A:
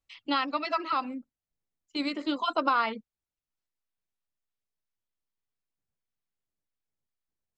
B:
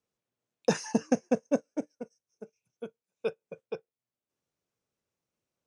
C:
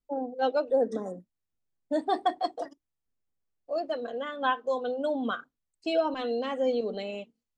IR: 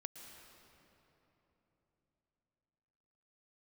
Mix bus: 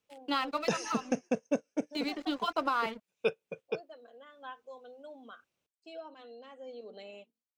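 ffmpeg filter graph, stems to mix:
-filter_complex "[0:a]aeval=exprs='sgn(val(0))*max(abs(val(0))-0.00501,0)':c=same,volume=0.708[s0];[1:a]equalizer=f=2800:w=1.5:g=8,volume=1.19[s1];[2:a]highpass=f=390:p=1,volume=0.316,afade=t=in:st=6.67:d=0.38:silence=0.421697[s2];[s0][s1][s2]amix=inputs=3:normalize=0,alimiter=limit=0.141:level=0:latency=1:release=341"

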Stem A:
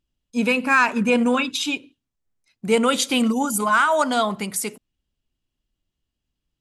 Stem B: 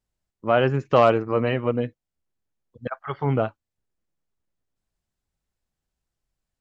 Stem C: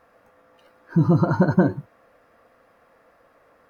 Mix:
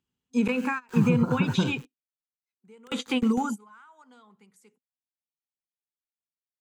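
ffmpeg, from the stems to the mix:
-filter_complex "[0:a]highpass=140,highshelf=f=3500:g=-11.5,acompressor=threshold=0.1:ratio=4,volume=1.19[s0];[1:a]highpass=1000,acrusher=bits=4:mix=0:aa=0.000001,asoftclip=type=tanh:threshold=0.075,volume=0.158,asplit=2[s1][s2];[2:a]aeval=exprs='val(0)*gte(abs(val(0)),0.00794)':c=same,volume=0.501[s3];[s2]apad=whole_len=291345[s4];[s0][s4]sidechaingate=range=0.0316:threshold=0.00141:ratio=16:detection=peak[s5];[s5][s1][s3]amix=inputs=3:normalize=0,acrossover=split=4000[s6][s7];[s7]acompressor=threshold=0.00562:ratio=4:attack=1:release=60[s8];[s6][s8]amix=inputs=2:normalize=0,superequalizer=6b=0.501:8b=0.282:15b=1.78,acrossover=split=300[s9][s10];[s10]acompressor=threshold=0.0501:ratio=10[s11];[s9][s11]amix=inputs=2:normalize=0"

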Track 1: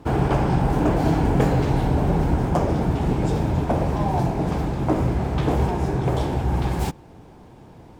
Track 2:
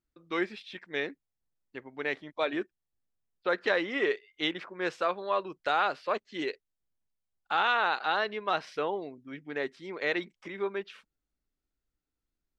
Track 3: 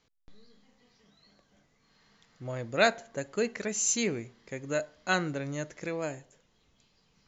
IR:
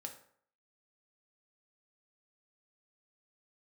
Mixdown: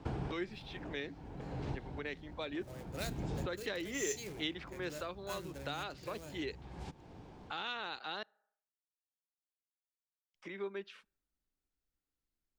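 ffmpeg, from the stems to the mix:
-filter_complex "[0:a]lowpass=4600,highshelf=f=3500:g=8,acompressor=threshold=0.0501:ratio=10,volume=0.376,asplit=2[s0][s1];[s1]volume=0.112[s2];[1:a]volume=0.562,asplit=3[s3][s4][s5];[s3]atrim=end=8.23,asetpts=PTS-STARTPTS,afade=t=out:st=8.226:d=0.004:c=hsin[s6];[s4]atrim=start=8.23:end=10.34,asetpts=PTS-STARTPTS,volume=0[s7];[s5]atrim=start=10.34,asetpts=PTS-STARTPTS,afade=t=in:d=0.004:c=hsin[s8];[s6][s7][s8]concat=n=3:v=0:a=1,asplit=3[s9][s10][s11];[s10]volume=0.0944[s12];[2:a]equalizer=f=230:w=5.7:g=-13,bandreject=f=60:t=h:w=6,bandreject=f=120:t=h:w=6,bandreject=f=180:t=h:w=6,acrusher=bits=2:mode=log:mix=0:aa=0.000001,adelay=200,volume=0.178,asplit=2[s13][s14];[s14]volume=0.376[s15];[s11]apad=whole_len=352378[s16];[s0][s16]sidechaincompress=threshold=0.00282:ratio=8:attack=7:release=456[s17];[3:a]atrim=start_sample=2205[s18];[s2][s12][s15]amix=inputs=3:normalize=0[s19];[s19][s18]afir=irnorm=-1:irlink=0[s20];[s17][s9][s13][s20]amix=inputs=4:normalize=0,acrossover=split=350|3000[s21][s22][s23];[s22]acompressor=threshold=0.00631:ratio=4[s24];[s21][s24][s23]amix=inputs=3:normalize=0"

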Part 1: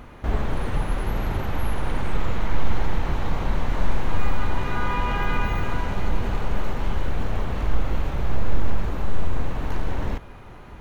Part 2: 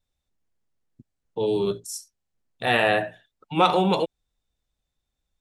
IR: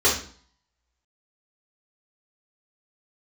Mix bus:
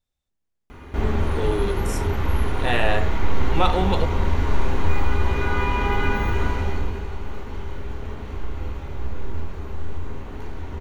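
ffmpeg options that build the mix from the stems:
-filter_complex "[0:a]adelay=700,volume=0.891,afade=t=out:st=6.49:d=0.55:silence=0.375837,asplit=2[s0][s1];[s1]volume=0.133[s2];[1:a]volume=0.75[s3];[2:a]atrim=start_sample=2205[s4];[s2][s4]afir=irnorm=-1:irlink=0[s5];[s0][s3][s5]amix=inputs=3:normalize=0"

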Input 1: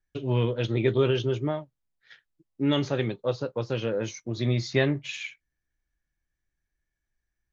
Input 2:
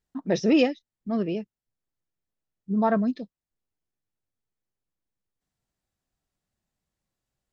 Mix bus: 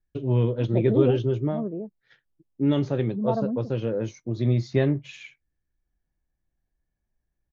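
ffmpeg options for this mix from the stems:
-filter_complex "[0:a]tiltshelf=f=860:g=6.5,volume=0.75[s0];[1:a]lowpass=f=1000:w=0.5412,lowpass=f=1000:w=1.3066,adelay=450,volume=0.631[s1];[s0][s1]amix=inputs=2:normalize=0"

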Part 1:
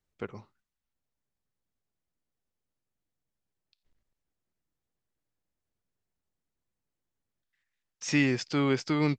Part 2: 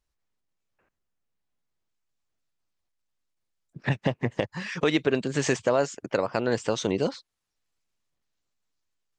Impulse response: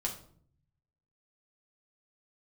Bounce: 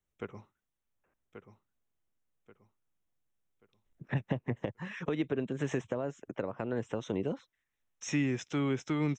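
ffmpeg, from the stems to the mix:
-filter_complex "[0:a]volume=0.708,asplit=2[s0][s1];[s1]volume=0.335[s2];[1:a]aemphasis=mode=reproduction:type=75kf,adelay=250,volume=0.531[s3];[s2]aecho=0:1:1133|2266|3399|4532|5665:1|0.35|0.122|0.0429|0.015[s4];[s0][s3][s4]amix=inputs=3:normalize=0,asuperstop=centerf=4600:order=4:qfactor=2.9,acrossover=split=350[s5][s6];[s6]acompressor=threshold=0.0178:ratio=10[s7];[s5][s7]amix=inputs=2:normalize=0"

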